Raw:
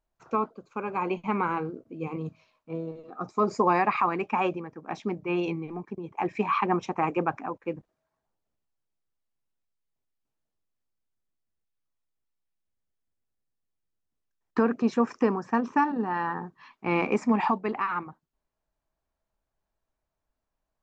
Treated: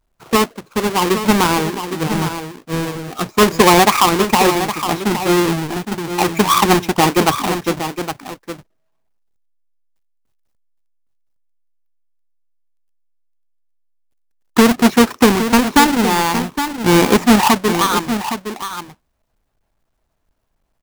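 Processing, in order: half-waves squared off; on a send: echo 0.814 s -9.5 dB; on the sum: gain +9 dB

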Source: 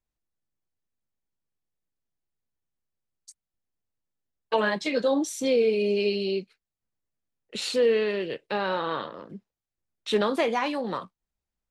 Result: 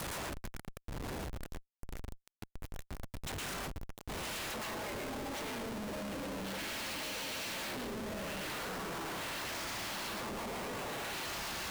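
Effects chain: zero-crossing step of -27.5 dBFS; weighting filter D; gate -49 dBFS, range -44 dB; diffused feedback echo 1.028 s, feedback 60%, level -11.5 dB; treble ducked by the level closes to 900 Hz, closed at -17.5 dBFS; high shelf 5700 Hz +9 dB; compressor 6:1, threshold -33 dBFS, peak gain reduction 14.5 dB; spectral gate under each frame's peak -10 dB weak; reverb RT60 0.65 s, pre-delay 0.11 s, DRR -1.5 dB; Schmitt trigger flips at -43.5 dBFS; gain +1 dB

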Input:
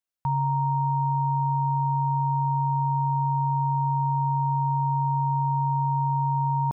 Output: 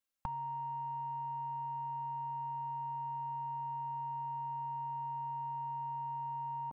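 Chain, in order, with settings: comb 3.7 ms, depth 98%; in parallel at -9 dB: soft clip -34 dBFS, distortion -17 dB; on the sum: gain -5.5 dB

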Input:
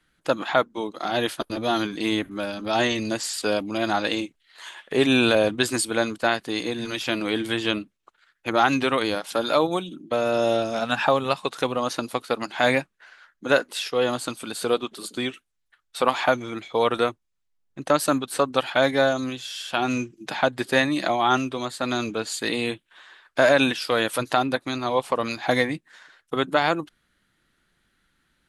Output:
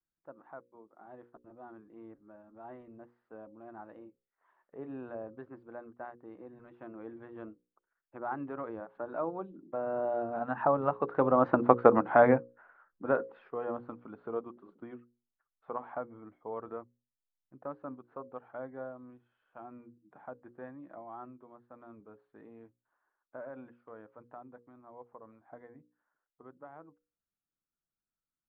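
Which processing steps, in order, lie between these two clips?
Doppler pass-by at 11.77, 13 m/s, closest 3.4 m; LPF 1300 Hz 24 dB/oct; notches 60/120/180/240/300/360/420/480/540 Hz; gain +7 dB

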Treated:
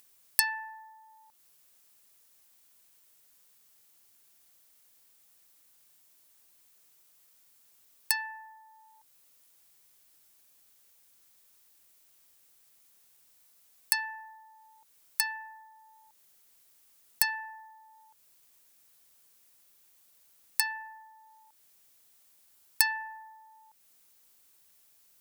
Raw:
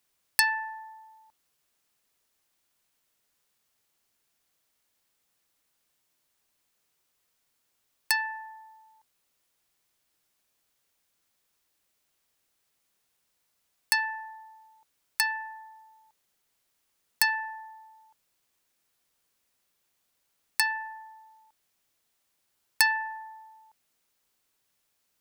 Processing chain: high shelf 6700 Hz +10.5 dB; upward compressor, threshold -45 dBFS; gain -6.5 dB

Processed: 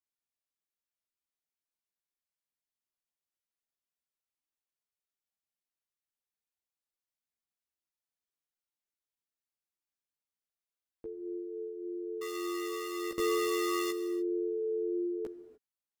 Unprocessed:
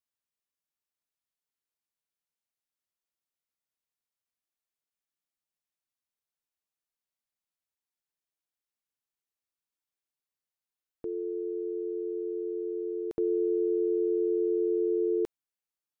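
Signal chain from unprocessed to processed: 12.21–13.91 half-waves squared off; chorus voices 6, 0.25 Hz, delay 15 ms, depth 3 ms; non-linear reverb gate 0.32 s flat, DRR 11.5 dB; gain -2.5 dB

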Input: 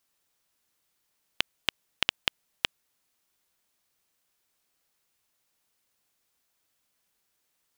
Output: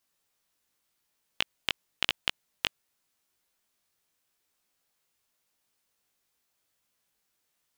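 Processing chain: chorus 0.89 Hz, delay 16.5 ms, depth 3.7 ms; gain +1.5 dB

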